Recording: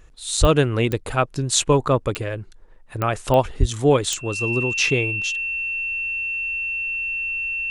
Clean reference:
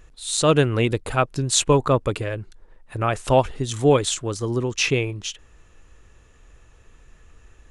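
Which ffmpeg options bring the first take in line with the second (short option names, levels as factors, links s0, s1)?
-filter_complex "[0:a]adeclick=t=4,bandreject=f=2700:w=30,asplit=3[s0][s1][s2];[s0]afade=t=out:st=0.4:d=0.02[s3];[s1]highpass=f=140:w=0.5412,highpass=f=140:w=1.3066,afade=t=in:st=0.4:d=0.02,afade=t=out:st=0.52:d=0.02[s4];[s2]afade=t=in:st=0.52:d=0.02[s5];[s3][s4][s5]amix=inputs=3:normalize=0,asplit=3[s6][s7][s8];[s6]afade=t=out:st=3.59:d=0.02[s9];[s7]highpass=f=140:w=0.5412,highpass=f=140:w=1.3066,afade=t=in:st=3.59:d=0.02,afade=t=out:st=3.71:d=0.02[s10];[s8]afade=t=in:st=3.71:d=0.02[s11];[s9][s10][s11]amix=inputs=3:normalize=0"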